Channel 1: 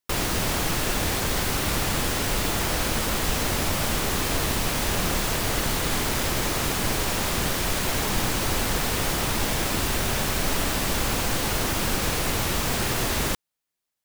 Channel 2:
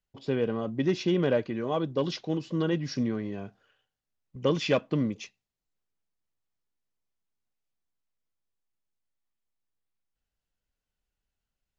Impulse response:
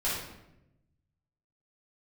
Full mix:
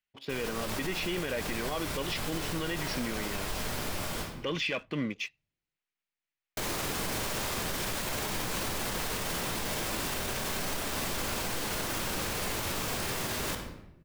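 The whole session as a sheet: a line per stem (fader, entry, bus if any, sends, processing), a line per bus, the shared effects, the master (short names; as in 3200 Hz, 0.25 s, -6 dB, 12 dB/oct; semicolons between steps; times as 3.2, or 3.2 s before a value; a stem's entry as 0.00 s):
-5.0 dB, 0.20 s, muted 4.22–6.57, send -12.5 dB, auto duck -14 dB, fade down 0.25 s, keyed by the second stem
-7.0 dB, 0.00 s, no send, bell 2300 Hz +14.5 dB 1.7 oct; sample leveller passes 1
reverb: on, RT60 0.90 s, pre-delay 5 ms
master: low shelf 94 Hz -9.5 dB; limiter -23.5 dBFS, peak gain reduction 10 dB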